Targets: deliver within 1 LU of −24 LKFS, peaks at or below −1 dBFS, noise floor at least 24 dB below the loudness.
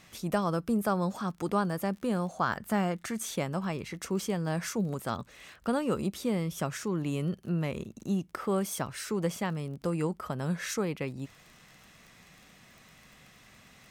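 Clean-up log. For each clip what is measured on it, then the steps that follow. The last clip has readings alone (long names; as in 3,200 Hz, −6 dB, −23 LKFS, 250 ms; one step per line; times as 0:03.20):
crackle rate 27 per second; integrated loudness −32.0 LKFS; sample peak −15.0 dBFS; target loudness −24.0 LKFS
→ click removal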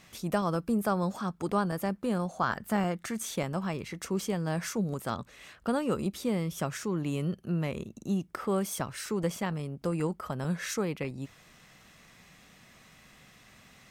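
crackle rate 0.22 per second; integrated loudness −32.5 LKFS; sample peak −15.0 dBFS; target loudness −24.0 LKFS
→ level +8.5 dB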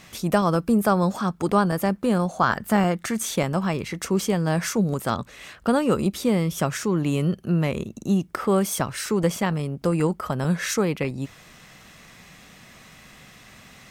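integrated loudness −24.0 LKFS; sample peak −6.5 dBFS; background noise floor −49 dBFS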